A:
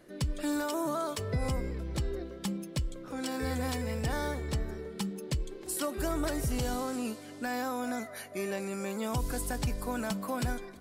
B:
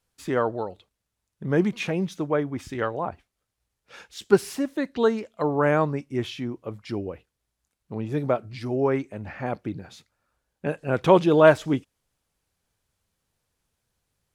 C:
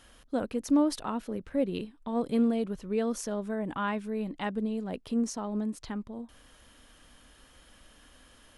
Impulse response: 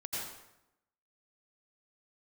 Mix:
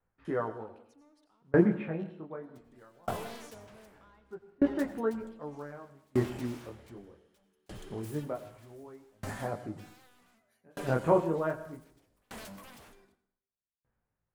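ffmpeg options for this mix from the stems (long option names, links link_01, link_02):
-filter_complex "[0:a]aeval=exprs='0.0158*(abs(mod(val(0)/0.0158+3,4)-2)-1)':channel_layout=same,adelay=2350,volume=-3.5dB,asplit=2[link_01][link_02];[link_02]volume=-11dB[link_03];[1:a]lowpass=frequency=1900:width=0.5412,lowpass=frequency=1900:width=1.3066,flanger=delay=17.5:depth=7.3:speed=0.22,volume=1.5dB,asplit=3[link_04][link_05][link_06];[link_05]volume=-10.5dB[link_07];[2:a]acompressor=threshold=-49dB:ratio=1.5,asplit=2[link_08][link_09];[link_09]highpass=frequency=720:poles=1,volume=18dB,asoftclip=type=tanh:threshold=-24dB[link_10];[link_08][link_10]amix=inputs=2:normalize=0,lowpass=frequency=3800:poles=1,volume=-6dB,adelay=250,volume=-8dB,asplit=2[link_11][link_12];[link_12]volume=-5.5dB[link_13];[link_06]apad=whole_len=388993[link_14];[link_11][link_14]sidechaincompress=threshold=-27dB:ratio=8:attack=16:release=1430[link_15];[3:a]atrim=start_sample=2205[link_16];[link_03][link_07][link_13]amix=inputs=3:normalize=0[link_17];[link_17][link_16]afir=irnorm=-1:irlink=0[link_18];[link_01][link_04][link_15][link_18]amix=inputs=4:normalize=0,aeval=exprs='val(0)*pow(10,-34*if(lt(mod(0.65*n/s,1),2*abs(0.65)/1000),1-mod(0.65*n/s,1)/(2*abs(0.65)/1000),(mod(0.65*n/s,1)-2*abs(0.65)/1000)/(1-2*abs(0.65)/1000))/20)':channel_layout=same"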